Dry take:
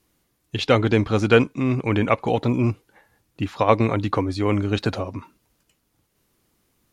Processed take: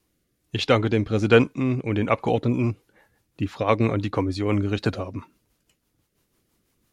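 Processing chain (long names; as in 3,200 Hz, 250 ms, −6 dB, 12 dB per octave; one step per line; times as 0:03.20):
rotating-speaker cabinet horn 1.2 Hz, later 6 Hz, at 0:02.10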